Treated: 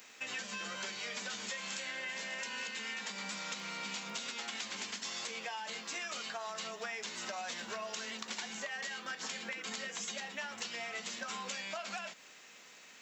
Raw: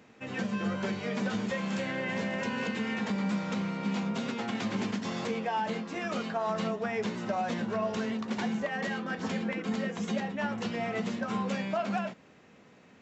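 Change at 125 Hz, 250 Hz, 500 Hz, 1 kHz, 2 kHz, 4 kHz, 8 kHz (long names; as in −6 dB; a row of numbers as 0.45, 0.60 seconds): −22.0 dB, −20.5 dB, −13.5 dB, −9.0 dB, −3.0 dB, +2.5 dB, can't be measured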